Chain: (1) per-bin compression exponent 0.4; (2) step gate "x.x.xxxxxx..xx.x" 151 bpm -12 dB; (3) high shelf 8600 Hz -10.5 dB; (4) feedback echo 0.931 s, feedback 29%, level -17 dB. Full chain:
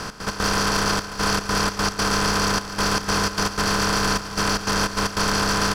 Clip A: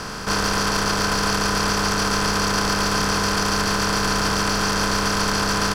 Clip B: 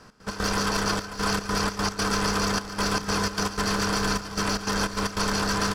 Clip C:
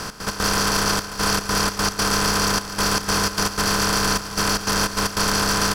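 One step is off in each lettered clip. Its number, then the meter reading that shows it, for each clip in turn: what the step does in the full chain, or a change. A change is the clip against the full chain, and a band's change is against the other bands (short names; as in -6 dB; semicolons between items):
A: 2, momentary loudness spread change -3 LU; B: 1, 250 Hz band +2.5 dB; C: 3, 8 kHz band +3.5 dB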